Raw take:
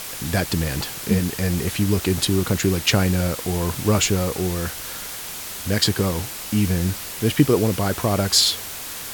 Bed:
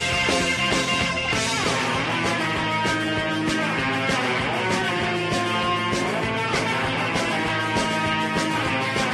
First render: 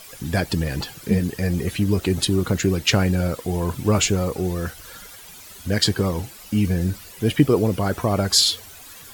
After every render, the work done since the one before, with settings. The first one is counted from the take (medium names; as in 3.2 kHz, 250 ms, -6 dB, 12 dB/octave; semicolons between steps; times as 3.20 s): noise reduction 13 dB, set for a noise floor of -33 dBFS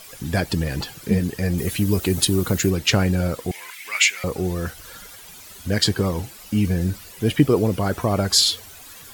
1.58–2.70 s: treble shelf 8.5 kHz +11.5 dB; 3.51–4.24 s: resonant high-pass 2.1 kHz, resonance Q 5.8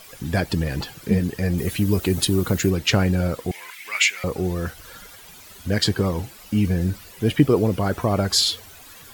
peaking EQ 9.4 kHz -4 dB 2 oct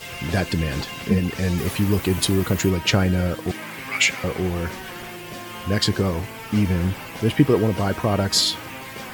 add bed -12.5 dB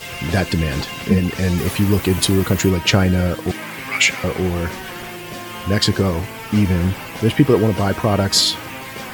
trim +4 dB; peak limiter -2 dBFS, peak gain reduction 1.5 dB